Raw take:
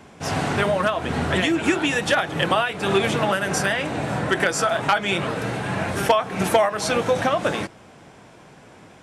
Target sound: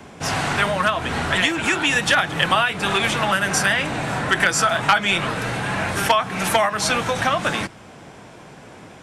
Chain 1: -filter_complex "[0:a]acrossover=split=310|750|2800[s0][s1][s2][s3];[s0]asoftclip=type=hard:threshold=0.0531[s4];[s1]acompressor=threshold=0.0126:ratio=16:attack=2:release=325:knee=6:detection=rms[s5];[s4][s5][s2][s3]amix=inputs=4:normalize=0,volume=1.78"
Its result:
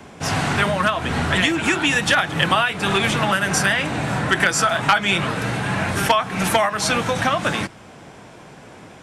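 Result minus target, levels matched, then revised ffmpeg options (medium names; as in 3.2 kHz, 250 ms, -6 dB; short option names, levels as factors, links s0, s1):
hard clipper: distortion -7 dB
-filter_complex "[0:a]acrossover=split=310|750|2800[s0][s1][s2][s3];[s0]asoftclip=type=hard:threshold=0.0251[s4];[s1]acompressor=threshold=0.0126:ratio=16:attack=2:release=325:knee=6:detection=rms[s5];[s4][s5][s2][s3]amix=inputs=4:normalize=0,volume=1.78"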